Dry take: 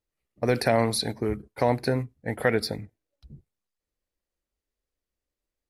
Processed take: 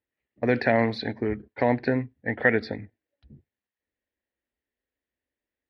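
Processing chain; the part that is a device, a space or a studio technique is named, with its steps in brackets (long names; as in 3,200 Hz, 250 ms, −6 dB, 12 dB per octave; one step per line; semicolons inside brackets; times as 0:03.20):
guitar cabinet (loudspeaker in its box 79–3,500 Hz, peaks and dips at 160 Hz −8 dB, 250 Hz +5 dB, 1,200 Hz −7 dB, 1,800 Hz +9 dB)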